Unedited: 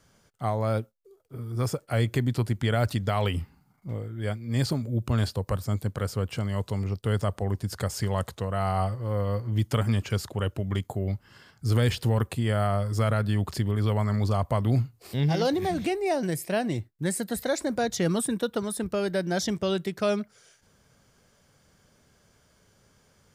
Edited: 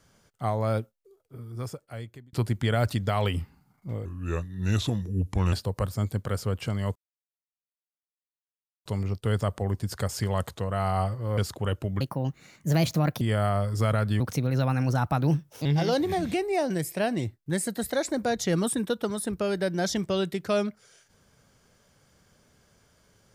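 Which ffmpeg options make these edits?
-filter_complex "[0:a]asplit=10[s0][s1][s2][s3][s4][s5][s6][s7][s8][s9];[s0]atrim=end=2.33,asetpts=PTS-STARTPTS,afade=t=out:st=0.72:d=1.61[s10];[s1]atrim=start=2.33:end=4.054,asetpts=PTS-STARTPTS,afade=t=in:d=0.004:c=hsin[s11];[s2]atrim=start=4.05:end=5.23,asetpts=PTS-STARTPTS,asetrate=35280,aresample=44100[s12];[s3]atrim=start=5.226:end=6.66,asetpts=PTS-STARTPTS,afade=t=out:st=1.43:d=0.004:c=hsin,apad=pad_dur=1.9[s13];[s4]atrim=start=6.66:end=9.182,asetpts=PTS-STARTPTS,afade=t=in:d=0.004:c=hsin[s14];[s5]atrim=start=10.118:end=10.754[s15];[s6]atrim=start=10.75:end=12.39,asetpts=PTS-STARTPTS,asetrate=59976,aresample=44100,atrim=end_sample=53179,asetpts=PTS-STARTPTS[s16];[s7]atrim=start=12.386:end=13.384[s17];[s8]atrim=start=13.38:end=15.18,asetpts=PTS-STARTPTS,asetrate=54684,aresample=44100,atrim=end_sample=64016,asetpts=PTS-STARTPTS[s18];[s9]atrim=start=15.176[s19];[s10][s11]concat=n=2:v=0:a=1[s20];[s20][s12]acrossfade=d=0.004:c1=hsin:c2=hsin[s21];[s13][s14]concat=n=2:v=0:a=1[s22];[s21][s22]acrossfade=d=0.004:c1=hsin:c2=hsin[s23];[s23][s15]acrossfade=d=0.004:c1=hsin:c2=hsin[s24];[s24][s16]acrossfade=d=0.004:c1=hsin:c2=hsin[s25];[s25][s17]acrossfade=d=0.004:c1=hsin:c2=hsin[s26];[s26][s18]acrossfade=d=0.004:c1=hsin:c2=hsin[s27];[s27][s19]acrossfade=d=0.004:c1=hsin:c2=hsin"

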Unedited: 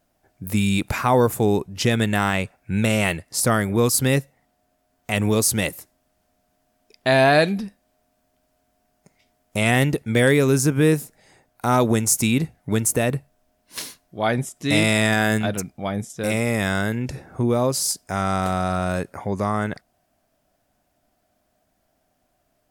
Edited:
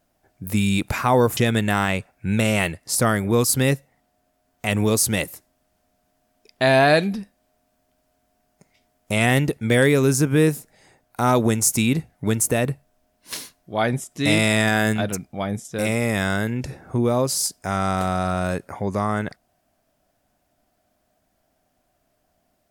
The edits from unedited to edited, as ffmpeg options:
-filter_complex "[0:a]asplit=2[s0][s1];[s0]atrim=end=1.372[s2];[s1]atrim=start=1.818[s3];[s2][s3]acrossfade=d=0.004:c1=hsin:c2=hsin"

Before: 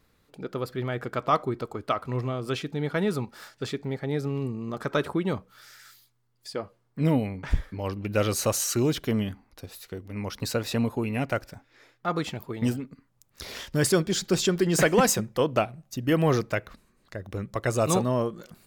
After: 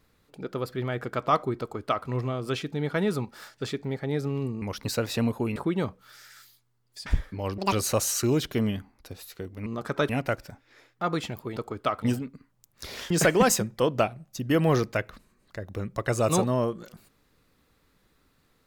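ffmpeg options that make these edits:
-filter_complex "[0:a]asplit=11[s0][s1][s2][s3][s4][s5][s6][s7][s8][s9][s10];[s0]atrim=end=4.622[s11];[s1]atrim=start=10.188:end=11.132[s12];[s2]atrim=start=5.048:end=6.552[s13];[s3]atrim=start=7.458:end=7.984[s14];[s4]atrim=start=7.98:end=8.25,asetpts=PTS-STARTPTS,asetrate=82908,aresample=44100[s15];[s5]atrim=start=8.246:end=10.192[s16];[s6]atrim=start=4.618:end=5.052[s17];[s7]atrim=start=11.128:end=12.602[s18];[s8]atrim=start=1.598:end=2.062[s19];[s9]atrim=start=12.598:end=13.682[s20];[s10]atrim=start=14.678[s21];[s11][s12]acrossfade=d=0.004:c1=hsin:c2=hsin[s22];[s22][s13]acrossfade=d=0.004:c1=hsin:c2=hsin[s23];[s23][s14]acrossfade=d=0.004:c1=hsin:c2=hsin[s24];[s24][s15]acrossfade=d=0.004:c1=hsin:c2=hsin[s25];[s25][s16]acrossfade=d=0.004:c1=hsin:c2=hsin[s26];[s26][s17]acrossfade=d=0.004:c1=hsin:c2=hsin[s27];[s27][s18]acrossfade=d=0.004:c1=hsin:c2=hsin[s28];[s28][s19]acrossfade=d=0.004:c1=hsin:c2=hsin[s29];[s29][s20]acrossfade=d=0.004:c1=hsin:c2=hsin[s30];[s30][s21]acrossfade=d=0.004:c1=hsin:c2=hsin"

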